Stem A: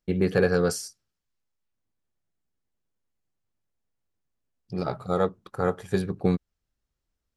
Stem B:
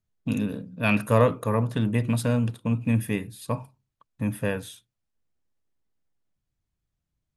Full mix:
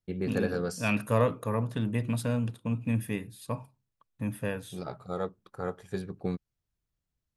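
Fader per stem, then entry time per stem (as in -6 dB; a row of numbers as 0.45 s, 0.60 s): -9.0 dB, -5.5 dB; 0.00 s, 0.00 s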